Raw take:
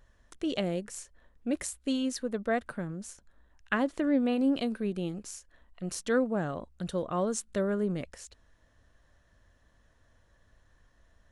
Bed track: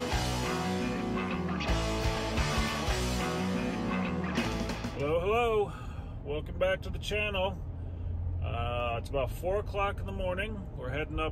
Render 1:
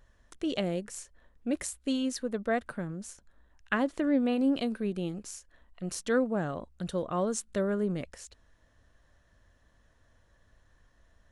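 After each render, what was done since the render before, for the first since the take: no audible change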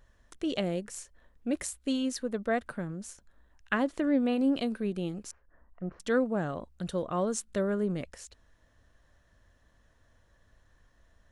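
5.31–6.00 s: low-pass 1.6 kHz 24 dB/octave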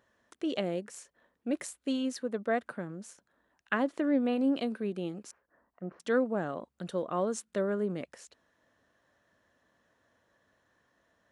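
high-pass 210 Hz 12 dB/octave; treble shelf 3.7 kHz -6.5 dB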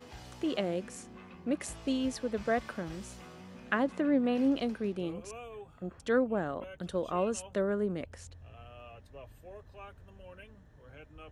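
add bed track -18 dB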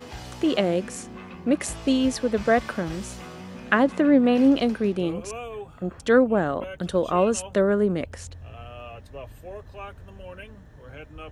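trim +10 dB

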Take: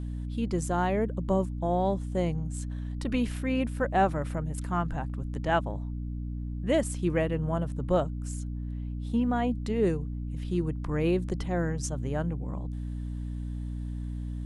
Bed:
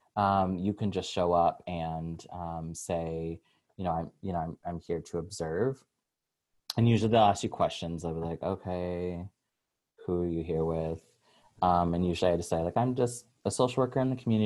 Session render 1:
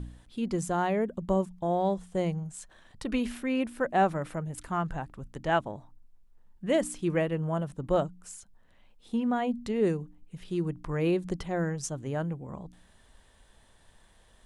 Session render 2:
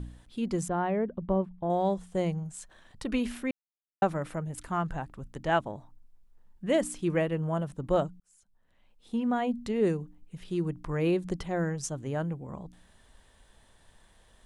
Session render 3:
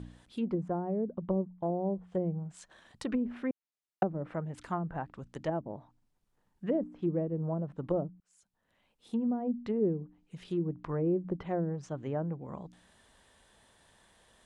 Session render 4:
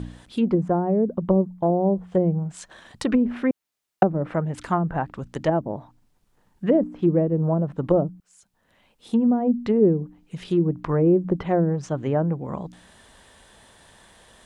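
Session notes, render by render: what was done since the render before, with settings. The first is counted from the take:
de-hum 60 Hz, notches 5
0.68–1.70 s: distance through air 420 m; 3.51–4.02 s: mute; 8.20–9.31 s: fade in linear
low-pass that closes with the level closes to 420 Hz, closed at -25 dBFS; high-pass 150 Hz 6 dB/octave
trim +11.5 dB

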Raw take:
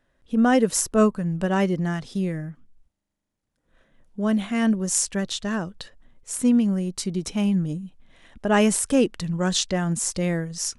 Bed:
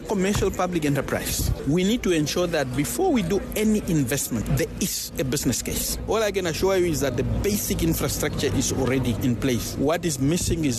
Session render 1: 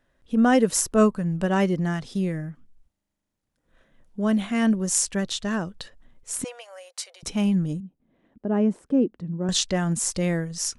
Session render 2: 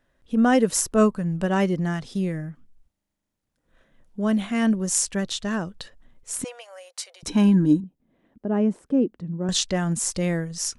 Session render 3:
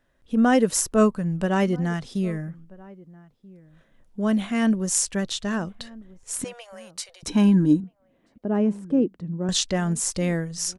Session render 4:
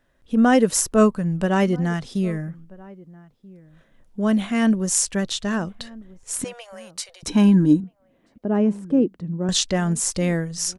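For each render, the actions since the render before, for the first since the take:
6.44–7.23 s: rippled Chebyshev high-pass 500 Hz, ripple 3 dB; 7.80–9.49 s: band-pass filter 270 Hz, Q 1.2
7.28–7.84 s: small resonant body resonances 300/960/1600/3900 Hz, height 17 dB
echo from a far wall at 220 m, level -22 dB
trim +2.5 dB; peak limiter -3 dBFS, peak gain reduction 0.5 dB

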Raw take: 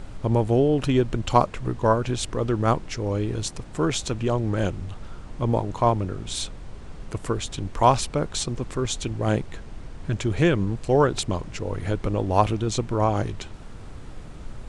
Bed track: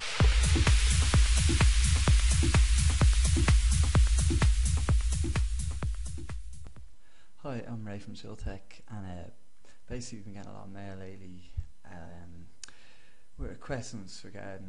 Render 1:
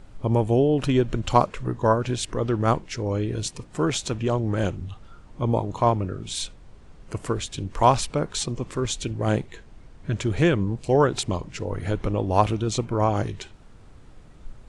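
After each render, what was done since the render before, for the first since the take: noise print and reduce 9 dB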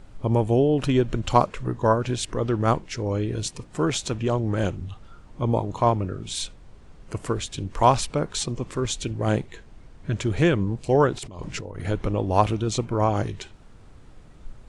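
11.18–11.86 s: compressor with a negative ratio -35 dBFS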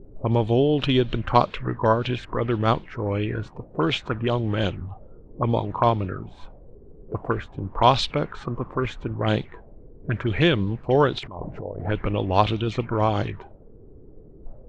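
touch-sensitive low-pass 350–3700 Hz up, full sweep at -19 dBFS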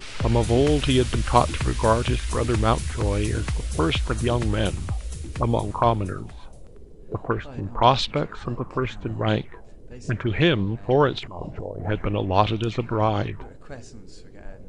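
add bed track -3.5 dB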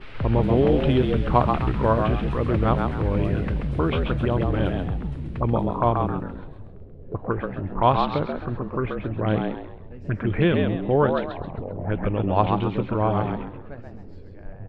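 distance through air 470 m; frequency-shifting echo 133 ms, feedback 31%, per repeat +87 Hz, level -5 dB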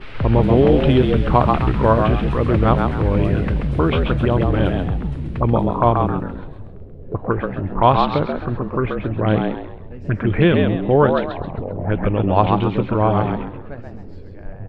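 trim +5.5 dB; peak limiter -1 dBFS, peak gain reduction 2.5 dB

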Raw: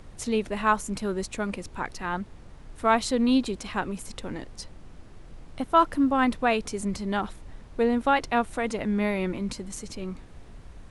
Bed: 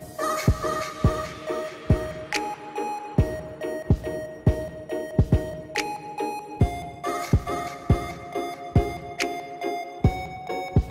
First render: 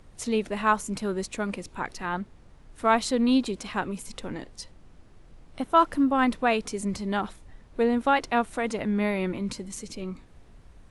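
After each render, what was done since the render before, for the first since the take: noise print and reduce 6 dB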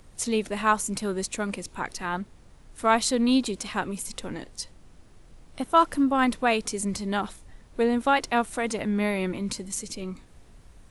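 treble shelf 5.3 kHz +10 dB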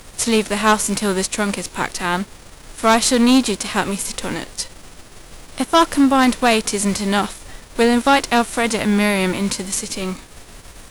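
formants flattened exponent 0.6; sine folder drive 6 dB, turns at -6.5 dBFS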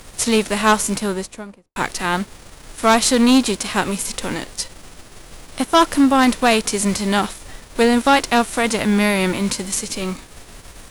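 0.76–1.76 s: studio fade out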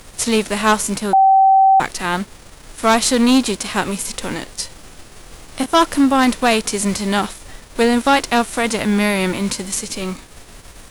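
1.13–1.80 s: bleep 772 Hz -7.5 dBFS; 4.60–5.66 s: doubling 26 ms -6.5 dB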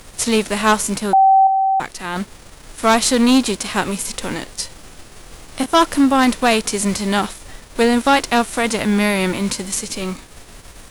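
1.47–2.16 s: gain -5.5 dB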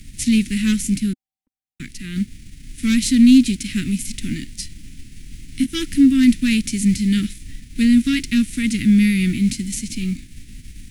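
Chebyshev band-stop 260–2100 Hz, order 3; tilt shelf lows +5 dB, about 1.1 kHz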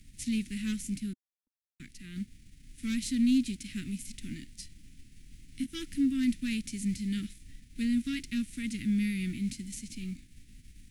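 trim -15 dB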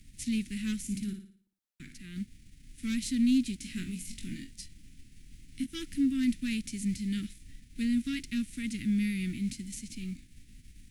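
0.82–2.00 s: flutter echo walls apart 9.8 m, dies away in 0.5 s; 3.58–4.51 s: flutter echo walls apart 3.8 m, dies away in 0.22 s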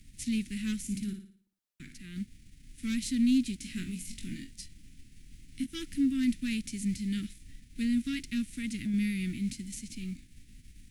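8.43–8.94 s: compression 2.5:1, threshold -30 dBFS

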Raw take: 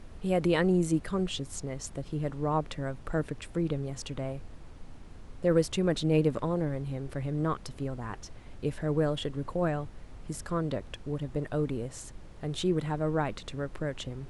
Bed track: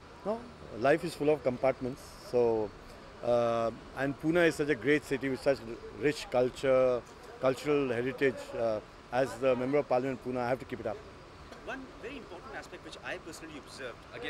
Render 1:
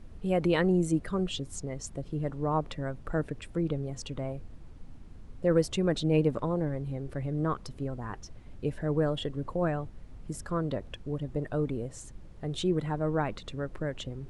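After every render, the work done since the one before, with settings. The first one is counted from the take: noise reduction 7 dB, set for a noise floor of -47 dBFS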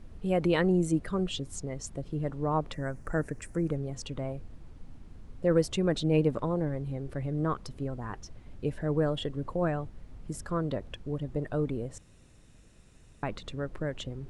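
2.73–3.76 s: FFT filter 1.2 kHz 0 dB, 1.8 kHz +5 dB, 3.5 kHz -11 dB, 6.2 kHz +8 dB; 11.98–13.23 s: room tone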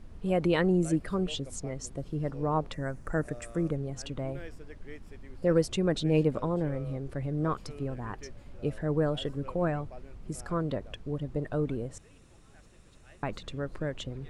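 add bed track -20 dB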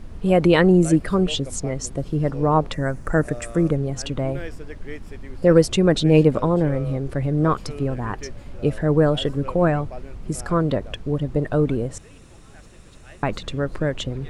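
trim +10.5 dB

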